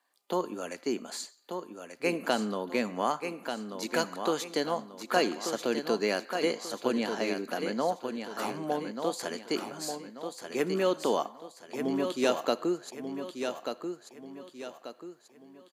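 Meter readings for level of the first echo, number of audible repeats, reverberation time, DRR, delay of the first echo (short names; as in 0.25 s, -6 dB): -7.0 dB, 4, none, none, 1.187 s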